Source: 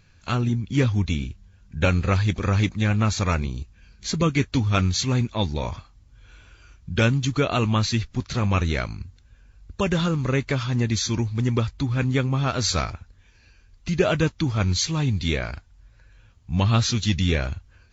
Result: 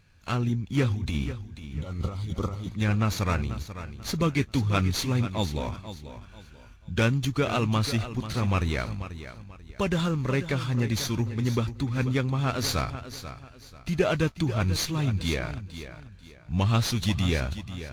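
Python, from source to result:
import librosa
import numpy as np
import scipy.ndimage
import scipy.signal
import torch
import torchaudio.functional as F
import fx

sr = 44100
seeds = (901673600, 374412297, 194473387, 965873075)

p1 = fx.over_compress(x, sr, threshold_db=-24.0, ratio=-0.5, at=(0.89, 2.7), fade=0.02)
p2 = fx.spec_repair(p1, sr, seeds[0], start_s=1.74, length_s=0.95, low_hz=1400.0, high_hz=2800.0, source='after')
p3 = p2 + fx.echo_feedback(p2, sr, ms=489, feedback_pct=31, wet_db=-12, dry=0)
p4 = fx.running_max(p3, sr, window=3)
y = p4 * librosa.db_to_amplitude(-3.5)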